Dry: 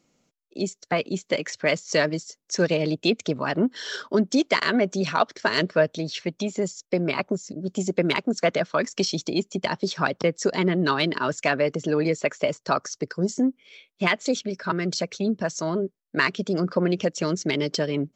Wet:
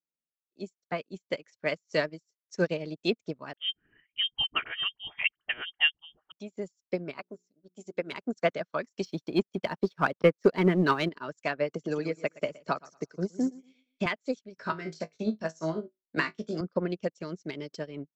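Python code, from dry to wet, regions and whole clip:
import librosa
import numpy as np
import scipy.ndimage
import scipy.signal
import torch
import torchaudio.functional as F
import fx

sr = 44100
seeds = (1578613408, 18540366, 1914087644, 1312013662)

y = fx.chain(x, sr, fx.freq_invert(carrier_hz=3400),
    fx.notch(hz=540.0, q=5.8),
    fx.dispersion(late='highs', ms=48.0, hz=750.0), at=(3.53, 6.32))
y = fx.chain(y, sr, fx.low_shelf(hz=170.0, db=-11.0),
    fx.hum_notches(base_hz=60, count=7), at=(7.19, 8.13))
y = fx.chain(y, sr, fx.lowpass(hz=3600.0, slope=12),
    fx.leveller(passes=1), at=(9.05, 11.09))
y = fx.chain(y, sr, fx.echo_feedback(ms=117, feedback_pct=40, wet_db=-10),
    fx.band_squash(depth_pct=70), at=(11.73, 14.06))
y = fx.chain(y, sr, fx.room_flutter(wall_m=3.2, rt60_s=0.22),
    fx.band_squash(depth_pct=70), at=(14.57, 16.61))
y = fx.dynamic_eq(y, sr, hz=3700.0, q=1.8, threshold_db=-39.0, ratio=4.0, max_db=-3)
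y = fx.upward_expand(y, sr, threshold_db=-40.0, expansion=2.5)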